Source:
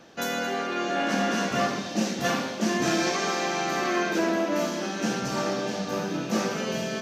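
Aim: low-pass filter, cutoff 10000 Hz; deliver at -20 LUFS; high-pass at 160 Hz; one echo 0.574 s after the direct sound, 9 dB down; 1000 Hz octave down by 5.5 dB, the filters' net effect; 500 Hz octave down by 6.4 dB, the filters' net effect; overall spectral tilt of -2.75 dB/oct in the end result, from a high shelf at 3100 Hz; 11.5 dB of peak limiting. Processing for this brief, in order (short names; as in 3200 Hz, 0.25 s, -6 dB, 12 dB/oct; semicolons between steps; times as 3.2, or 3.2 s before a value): HPF 160 Hz; LPF 10000 Hz; bell 500 Hz -7.5 dB; bell 1000 Hz -5.5 dB; high shelf 3100 Hz +3.5 dB; limiter -26 dBFS; echo 0.574 s -9 dB; gain +13.5 dB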